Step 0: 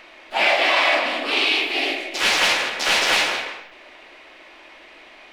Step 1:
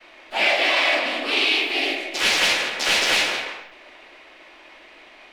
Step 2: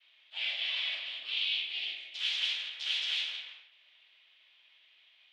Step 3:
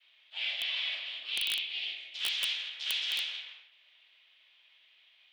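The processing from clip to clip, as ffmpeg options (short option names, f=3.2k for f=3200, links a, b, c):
-filter_complex "[0:a]agate=range=-33dB:threshold=-43dB:ratio=3:detection=peak,acrossover=split=740|1400[a][b][c];[b]acompressor=threshold=-38dB:ratio=6[d];[a][d][c]amix=inputs=3:normalize=0"
-af "bandpass=f=3.3k:t=q:w=4.9:csg=0,volume=-6.5dB"
-af "aeval=exprs='(mod(12.6*val(0)+1,2)-1)/12.6':c=same,highpass=230"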